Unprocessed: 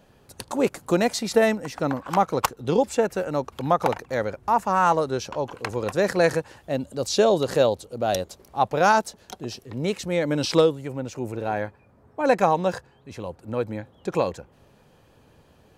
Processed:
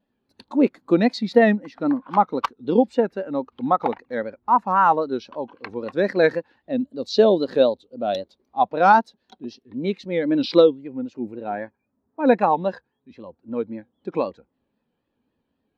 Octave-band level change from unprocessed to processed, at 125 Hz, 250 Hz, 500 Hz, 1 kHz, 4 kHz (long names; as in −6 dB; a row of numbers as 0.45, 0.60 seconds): −4.0, +5.0, +1.5, +3.0, −2.0 decibels